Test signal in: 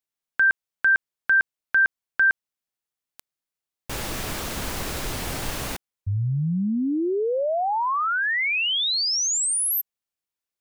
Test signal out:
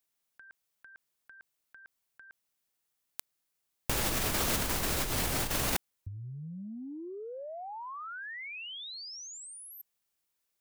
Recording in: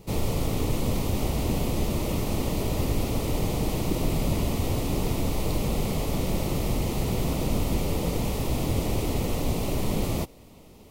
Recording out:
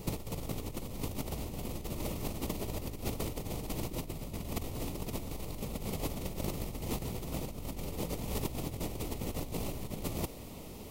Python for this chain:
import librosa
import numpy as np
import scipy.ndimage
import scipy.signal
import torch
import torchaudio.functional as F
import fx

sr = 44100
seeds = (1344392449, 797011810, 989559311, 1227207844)

y = fx.high_shelf(x, sr, hz=8300.0, db=5.0)
y = fx.over_compress(y, sr, threshold_db=-31.0, ratio=-0.5)
y = F.gain(torch.from_numpy(y), -4.0).numpy()